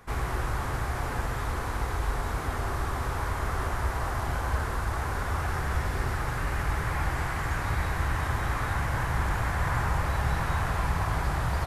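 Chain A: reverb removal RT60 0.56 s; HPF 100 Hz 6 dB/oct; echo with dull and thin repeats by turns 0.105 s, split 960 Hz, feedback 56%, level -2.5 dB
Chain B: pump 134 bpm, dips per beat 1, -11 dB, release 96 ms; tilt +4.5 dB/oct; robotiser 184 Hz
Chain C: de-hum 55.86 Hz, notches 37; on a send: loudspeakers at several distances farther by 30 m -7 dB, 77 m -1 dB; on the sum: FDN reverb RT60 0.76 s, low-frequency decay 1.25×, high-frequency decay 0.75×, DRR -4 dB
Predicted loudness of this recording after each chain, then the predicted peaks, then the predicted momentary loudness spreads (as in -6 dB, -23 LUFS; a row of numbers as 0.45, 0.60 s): -32.0, -32.0, -21.0 LUFS; -17.0, -11.0, -6.0 dBFS; 3, 2, 3 LU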